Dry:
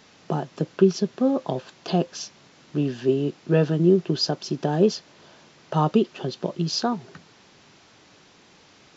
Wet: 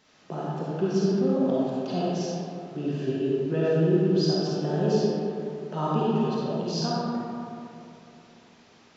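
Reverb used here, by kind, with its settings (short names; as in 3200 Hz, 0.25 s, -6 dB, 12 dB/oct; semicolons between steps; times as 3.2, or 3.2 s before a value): digital reverb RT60 2.8 s, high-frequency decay 0.45×, pre-delay 10 ms, DRR -7.5 dB; gain -10.5 dB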